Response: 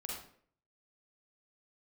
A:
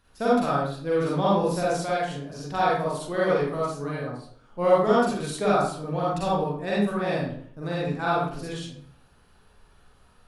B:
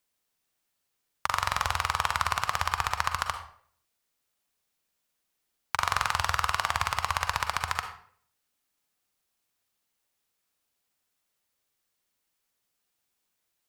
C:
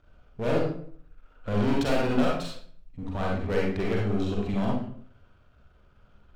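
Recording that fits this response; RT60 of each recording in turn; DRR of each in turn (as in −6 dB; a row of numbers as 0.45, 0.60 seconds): C; 0.55, 0.55, 0.55 seconds; −7.5, 6.5, −3.5 decibels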